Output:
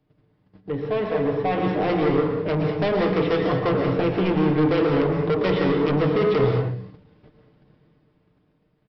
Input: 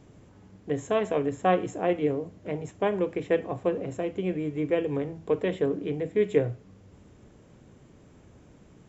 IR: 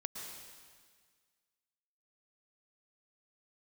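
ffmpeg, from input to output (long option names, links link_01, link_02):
-filter_complex "[0:a]agate=range=-19dB:threshold=-49dB:ratio=16:detection=peak,bandreject=frequency=60:width_type=h:width=6,bandreject=frequency=120:width_type=h:width=6,bandreject=frequency=180:width_type=h:width=6,bandreject=frequency=240:width_type=h:width=6,bandreject=frequency=300:width_type=h:width=6,bandreject=frequency=360:width_type=h:width=6,bandreject=frequency=420:width_type=h:width=6,bandreject=frequency=480:width_type=h:width=6,bandreject=frequency=540:width_type=h:width=6,aecho=1:1:6.6:0.43,acrossover=split=140[link_01][link_02];[link_02]alimiter=limit=-19dB:level=0:latency=1:release=95[link_03];[link_01][link_03]amix=inputs=2:normalize=0,dynaudnorm=framelen=470:gausssize=7:maxgain=11.5dB,aresample=11025,asoftclip=type=tanh:threshold=-22.5dB,aresample=44100[link_04];[1:a]atrim=start_sample=2205,afade=type=out:start_time=0.29:duration=0.01,atrim=end_sample=13230[link_05];[link_04][link_05]afir=irnorm=-1:irlink=0,volume=6.5dB"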